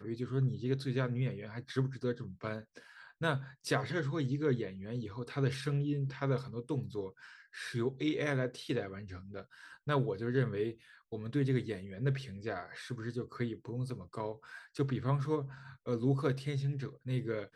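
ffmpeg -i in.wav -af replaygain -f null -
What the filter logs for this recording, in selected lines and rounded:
track_gain = +16.0 dB
track_peak = 0.122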